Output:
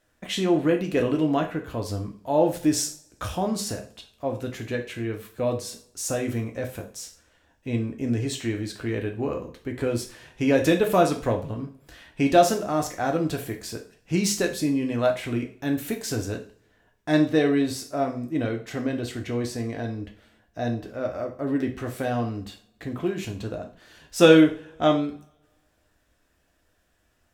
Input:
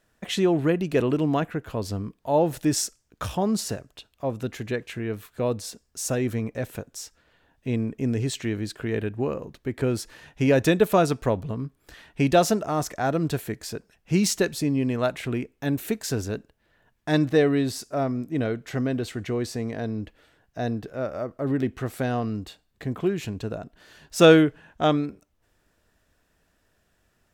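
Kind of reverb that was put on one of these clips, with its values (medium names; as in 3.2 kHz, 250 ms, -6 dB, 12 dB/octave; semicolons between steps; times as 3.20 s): two-slope reverb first 0.38 s, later 1.5 s, from -28 dB, DRR 2 dB; trim -2 dB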